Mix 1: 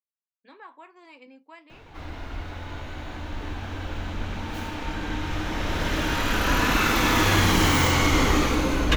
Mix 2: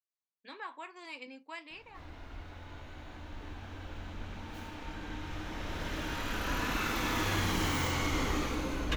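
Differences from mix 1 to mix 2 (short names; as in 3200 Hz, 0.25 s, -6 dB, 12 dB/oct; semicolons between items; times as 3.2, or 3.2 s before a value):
speech: add high shelf 2100 Hz +11 dB; background -11.5 dB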